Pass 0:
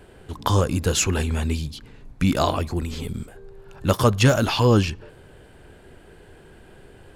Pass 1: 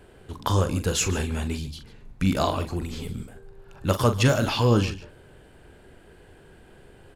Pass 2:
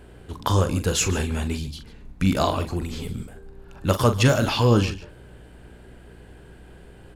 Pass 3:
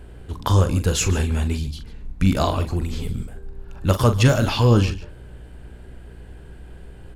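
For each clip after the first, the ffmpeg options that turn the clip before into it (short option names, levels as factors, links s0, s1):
-af "aecho=1:1:42|146:0.316|0.141,volume=0.668"
-af "aeval=exprs='val(0)+0.00355*(sin(2*PI*60*n/s)+sin(2*PI*2*60*n/s)/2+sin(2*PI*3*60*n/s)/3+sin(2*PI*4*60*n/s)/4+sin(2*PI*5*60*n/s)/5)':c=same,volume=1.26"
-af "lowshelf=f=85:g=11"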